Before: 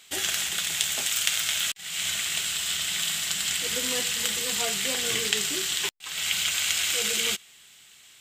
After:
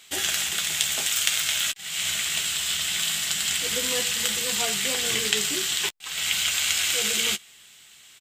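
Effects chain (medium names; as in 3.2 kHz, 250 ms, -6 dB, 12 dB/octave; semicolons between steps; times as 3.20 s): doubling 14 ms -10.5 dB; trim +1.5 dB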